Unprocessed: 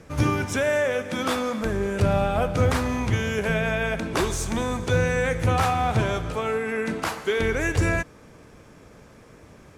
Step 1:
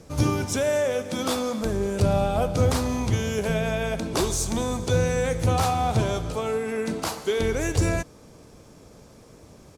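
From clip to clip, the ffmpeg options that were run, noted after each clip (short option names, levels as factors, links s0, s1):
-af "firequalizer=gain_entry='entry(720,0);entry(1700,-8);entry(4300,4)':delay=0.05:min_phase=1"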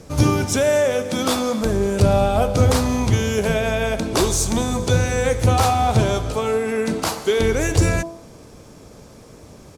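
-af "bandreject=f=166.9:t=h:w=4,bandreject=f=333.8:t=h:w=4,bandreject=f=500.7:t=h:w=4,bandreject=f=667.6:t=h:w=4,bandreject=f=834.5:t=h:w=4,bandreject=f=1001.4:t=h:w=4,bandreject=f=1168.3:t=h:w=4,volume=2"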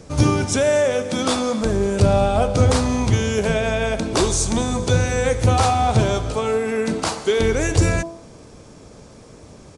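-af "aresample=22050,aresample=44100"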